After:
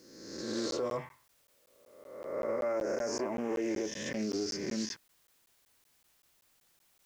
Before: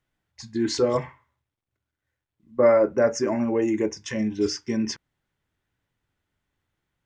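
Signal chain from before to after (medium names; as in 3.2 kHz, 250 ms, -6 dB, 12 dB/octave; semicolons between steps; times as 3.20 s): reverse spectral sustain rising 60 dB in 1.17 s; peaking EQ 88 Hz -5.5 dB 2 oct; peak limiter -17 dBFS, peak gain reduction 10.5 dB; added noise white -61 dBFS; crackling interface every 0.19 s, samples 512, zero, from 0.71 s; loudspeaker Doppler distortion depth 0.15 ms; trim -8.5 dB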